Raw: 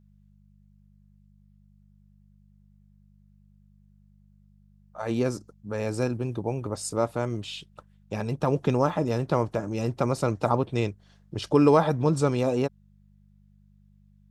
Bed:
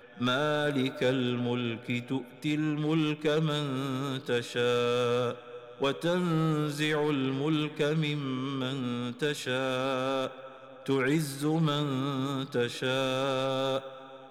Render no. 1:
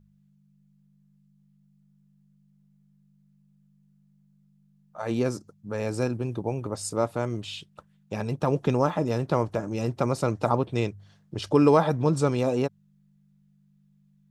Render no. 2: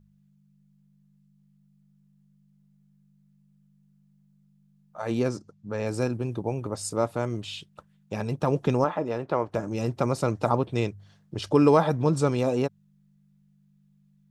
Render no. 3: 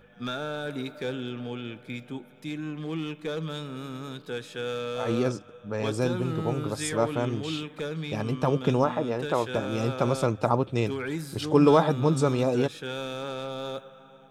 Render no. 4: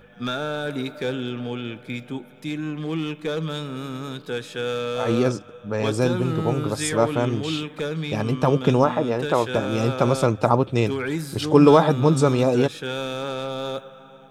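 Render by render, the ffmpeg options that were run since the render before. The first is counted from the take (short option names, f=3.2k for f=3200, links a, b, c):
-af "bandreject=f=50:t=h:w=4,bandreject=f=100:t=h:w=4"
-filter_complex "[0:a]asettb=1/sr,asplit=3[a][b][c];[a]atrim=end=5.284[d];[b]atrim=start=5.28:end=5.86,asetpts=PTS-STARTPTS,afade=t=in:d=0.004:c=qsin,afade=t=out:st=0.576:d=0.004:c=qsin,lowpass=6.7k[e];[c]atrim=start=5.856[f];[d][e]acrossfade=d=0.004:c1=hsin:c2=qsin[g];[g][f]acrossfade=d=0.004:c1=qsin:c2=hsin,asettb=1/sr,asplit=3[h][i][j];[h]atrim=end=8.844[k];[i]atrim=start=8.84:end=9.54,asetpts=PTS-STARTPTS,afade=t=in:d=0.004:c=qsin,afade=t=out:st=0.696:d=0.004:c=qsin,bass=f=250:g=-10,treble=f=4k:g=-14[l];[j]atrim=start=9.536[m];[k][l]acrossfade=d=0.004:c1=hsin:c2=qsin[n];[n][m]acrossfade=d=0.004:c1=qsin:c2=hsin"
-filter_complex "[1:a]volume=-5dB[a];[0:a][a]amix=inputs=2:normalize=0"
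-af "volume=5.5dB,alimiter=limit=-2dB:level=0:latency=1"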